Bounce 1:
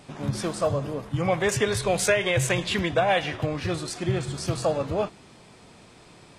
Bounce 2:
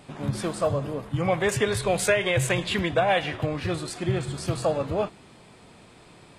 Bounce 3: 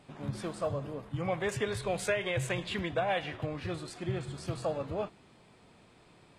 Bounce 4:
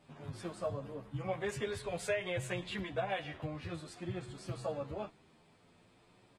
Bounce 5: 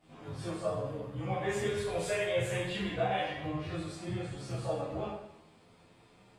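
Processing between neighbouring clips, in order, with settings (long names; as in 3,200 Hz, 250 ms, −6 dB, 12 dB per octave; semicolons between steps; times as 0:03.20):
parametric band 5,800 Hz −6 dB 0.5 octaves
high-shelf EQ 8,900 Hz −7.5 dB; level −8.5 dB
barber-pole flanger 9.8 ms +0.56 Hz; level −2.5 dB
convolution reverb RT60 0.80 s, pre-delay 6 ms, DRR −9 dB; level −5 dB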